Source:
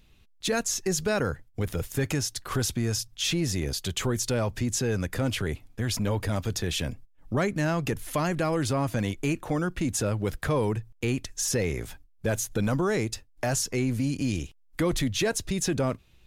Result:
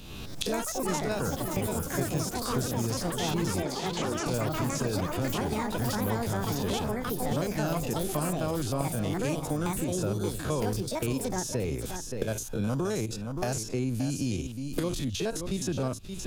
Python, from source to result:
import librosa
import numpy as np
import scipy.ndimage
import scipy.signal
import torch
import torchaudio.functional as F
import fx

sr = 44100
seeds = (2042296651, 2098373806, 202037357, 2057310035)

y = fx.spec_steps(x, sr, hold_ms=50)
y = fx.recorder_agc(y, sr, target_db=-25.5, rise_db_per_s=59.0, max_gain_db=30)
y = fx.peak_eq(y, sr, hz=2000.0, db=-10.5, octaves=0.49)
y = fx.echo_pitch(y, sr, ms=166, semitones=6, count=3, db_per_echo=-3.0)
y = fx.bandpass_edges(y, sr, low_hz=250.0, high_hz=6400.0, at=(3.62, 4.26))
y = y + 10.0 ** (-11.0 / 20.0) * np.pad(y, (int(575 * sr / 1000.0), 0))[:len(y)]
y = fx.band_squash(y, sr, depth_pct=70)
y = F.gain(torch.from_numpy(y), -3.5).numpy()